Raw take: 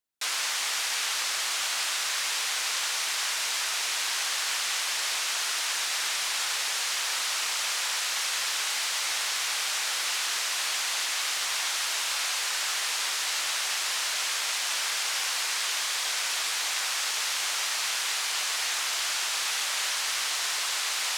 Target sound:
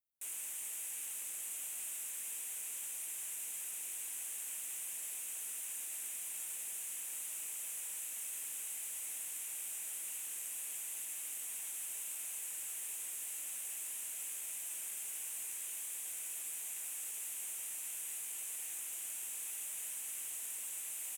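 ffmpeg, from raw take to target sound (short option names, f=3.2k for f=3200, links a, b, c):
-af "firequalizer=gain_entry='entry(110,0);entry(530,-16);entry(1200,-26);entry(2600,-16);entry(4400,-29);entry(8200,-16)':delay=0.05:min_phase=1,aexciter=amount=5.5:drive=6.7:freq=6.9k,volume=-5dB"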